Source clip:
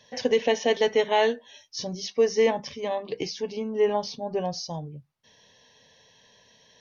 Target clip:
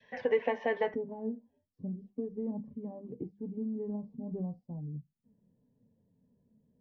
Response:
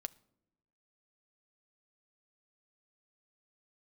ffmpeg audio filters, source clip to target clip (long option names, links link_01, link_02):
-filter_complex "[0:a]adynamicequalizer=threshold=0.0126:dfrequency=1000:dqfactor=1.3:tfrequency=1000:tqfactor=1.3:attack=5:release=100:ratio=0.375:range=3:mode=boostabove:tftype=bell,acrossover=split=280|1200[link_01][link_02][link_03];[link_01]acompressor=threshold=-38dB:ratio=4[link_04];[link_02]acompressor=threshold=-22dB:ratio=4[link_05];[link_03]acompressor=threshold=-42dB:ratio=4[link_06];[link_04][link_05][link_06]amix=inputs=3:normalize=0,asetnsamples=nb_out_samples=441:pad=0,asendcmd='0.94 lowpass f 230',lowpass=frequency=2000:width_type=q:width=2.4,flanger=delay=4.2:depth=9.9:regen=54:speed=0.38:shape=triangular,volume=-1dB"